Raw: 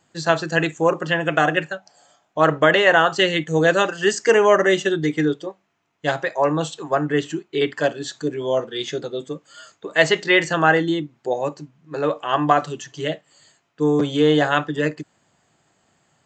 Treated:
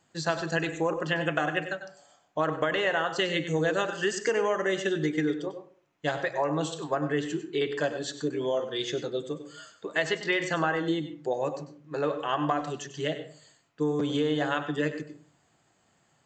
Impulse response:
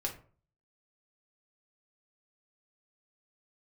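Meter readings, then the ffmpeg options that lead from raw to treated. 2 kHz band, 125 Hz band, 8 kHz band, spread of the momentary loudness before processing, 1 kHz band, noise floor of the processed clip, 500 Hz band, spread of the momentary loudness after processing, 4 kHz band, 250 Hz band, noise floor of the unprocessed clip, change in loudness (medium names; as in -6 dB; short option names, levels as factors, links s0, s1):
-10.0 dB, -7.5 dB, -7.0 dB, 13 LU, -10.0 dB, -68 dBFS, -9.0 dB, 10 LU, -8.5 dB, -7.5 dB, -67 dBFS, -9.5 dB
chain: -filter_complex "[0:a]acompressor=threshold=0.112:ratio=6,asplit=2[s0][s1];[1:a]atrim=start_sample=2205,asetrate=40572,aresample=44100,adelay=96[s2];[s1][s2]afir=irnorm=-1:irlink=0,volume=0.237[s3];[s0][s3]amix=inputs=2:normalize=0,volume=0.596"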